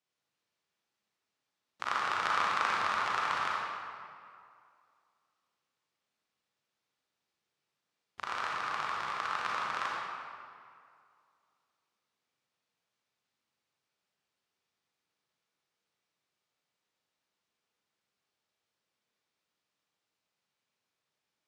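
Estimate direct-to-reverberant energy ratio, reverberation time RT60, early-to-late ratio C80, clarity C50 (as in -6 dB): -4.5 dB, 2.2 s, -0.5 dB, -3.0 dB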